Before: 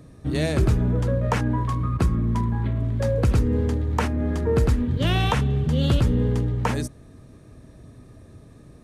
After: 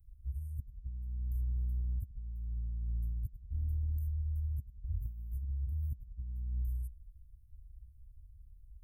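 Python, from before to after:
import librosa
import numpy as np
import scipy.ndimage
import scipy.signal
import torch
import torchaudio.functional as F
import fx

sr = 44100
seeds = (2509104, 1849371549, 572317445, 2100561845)

y = scipy.signal.sosfilt(scipy.signal.cheby2(4, 80, [310.0, 4300.0], 'bandstop', fs=sr, output='sos'), x)
y = fx.hum_notches(y, sr, base_hz=50, count=2)
y = fx.over_compress(y, sr, threshold_db=-36.0, ratio=-0.5)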